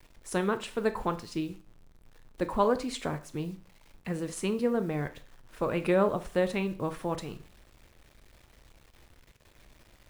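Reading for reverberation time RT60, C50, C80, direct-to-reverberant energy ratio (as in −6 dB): 0.45 s, 15.5 dB, 21.0 dB, 9.5 dB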